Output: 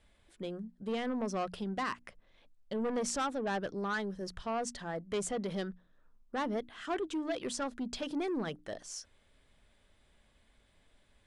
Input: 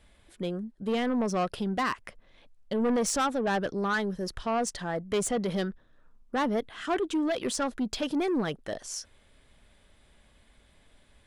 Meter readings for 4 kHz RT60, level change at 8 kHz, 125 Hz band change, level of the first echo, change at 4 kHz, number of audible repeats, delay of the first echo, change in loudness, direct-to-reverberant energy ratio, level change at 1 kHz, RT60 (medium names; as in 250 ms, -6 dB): no reverb, -7.0 dB, -7.5 dB, no echo, -6.5 dB, no echo, no echo, -7.0 dB, no reverb, -6.5 dB, no reverb